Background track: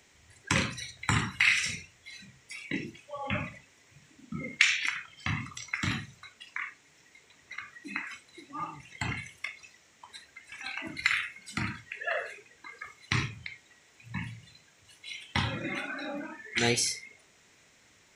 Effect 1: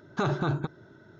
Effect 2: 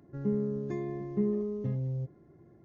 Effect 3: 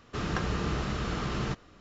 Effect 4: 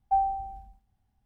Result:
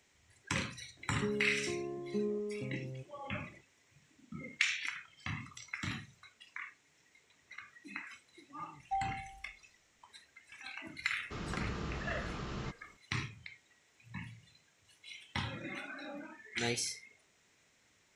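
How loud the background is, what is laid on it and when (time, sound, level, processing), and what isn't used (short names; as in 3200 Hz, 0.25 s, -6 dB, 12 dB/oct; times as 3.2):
background track -8.5 dB
0.97 add 2 -12 dB + band shelf 600 Hz +8.5 dB 2.9 oct
8.8 add 4 -11.5 dB
11.17 add 3 -9.5 dB
not used: 1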